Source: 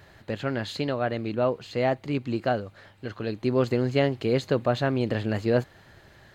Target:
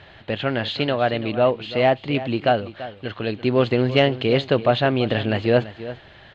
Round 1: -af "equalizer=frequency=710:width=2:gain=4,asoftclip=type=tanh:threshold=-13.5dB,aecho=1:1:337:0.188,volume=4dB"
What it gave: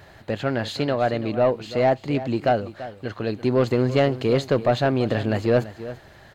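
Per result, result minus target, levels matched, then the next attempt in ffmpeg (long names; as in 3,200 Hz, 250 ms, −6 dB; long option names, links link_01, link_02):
soft clipping: distortion +14 dB; 4,000 Hz band −5.5 dB
-af "equalizer=frequency=710:width=2:gain=4,asoftclip=type=tanh:threshold=-3.5dB,aecho=1:1:337:0.188,volume=4dB"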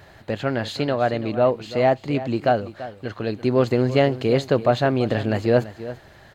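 4,000 Hz band −6.0 dB
-af "lowpass=frequency=3200:width_type=q:width=2.9,equalizer=frequency=710:width=2:gain=4,asoftclip=type=tanh:threshold=-3.5dB,aecho=1:1:337:0.188,volume=4dB"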